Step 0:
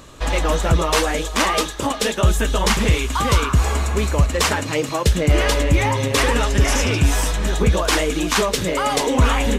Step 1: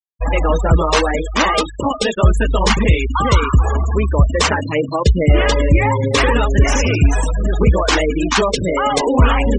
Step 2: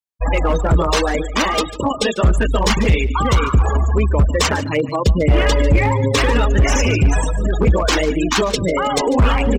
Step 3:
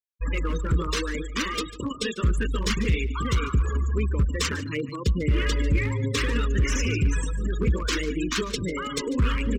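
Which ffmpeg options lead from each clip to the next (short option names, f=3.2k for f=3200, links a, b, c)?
-af "afftfilt=real='re*gte(hypot(re,im),0.112)':imag='im*gte(hypot(re,im),0.112)':win_size=1024:overlap=0.75,volume=4dB"
-filter_complex "[0:a]asoftclip=type=hard:threshold=-8dB,acrossover=split=410|3000[a][b][c];[b]acompressor=threshold=-17dB:ratio=6[d];[a][d][c]amix=inputs=3:normalize=0,aecho=1:1:146:0.15"
-af "asuperstop=centerf=730:order=4:qfactor=0.99,volume=-8.5dB"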